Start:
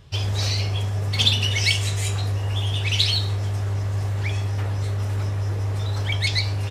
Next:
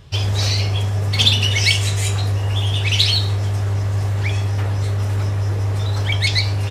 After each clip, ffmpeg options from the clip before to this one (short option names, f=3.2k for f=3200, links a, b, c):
-af "acontrast=21"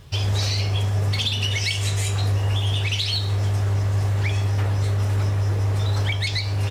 -af "alimiter=limit=-12.5dB:level=0:latency=1:release=218,acrusher=bits=8:mix=0:aa=0.5,volume=-1.5dB"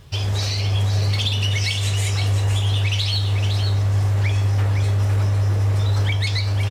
-af "aecho=1:1:509:0.447"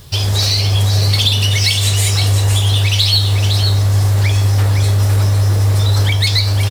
-af "aexciter=amount=1.1:drive=9.7:freq=3.7k,volume=6dB"